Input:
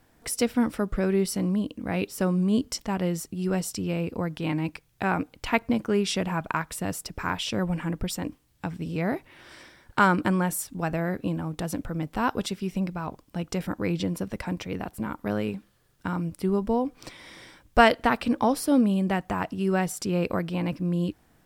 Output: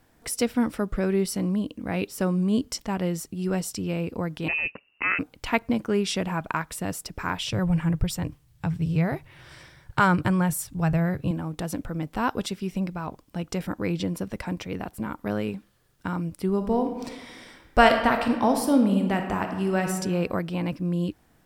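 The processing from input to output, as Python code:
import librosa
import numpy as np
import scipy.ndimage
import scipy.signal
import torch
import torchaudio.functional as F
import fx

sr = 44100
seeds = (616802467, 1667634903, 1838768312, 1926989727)

y = fx.freq_invert(x, sr, carrier_hz=2800, at=(4.48, 5.19))
y = fx.low_shelf_res(y, sr, hz=180.0, db=7.0, q=3.0, at=(7.41, 11.31))
y = fx.reverb_throw(y, sr, start_s=16.55, length_s=3.4, rt60_s=1.2, drr_db=4.5)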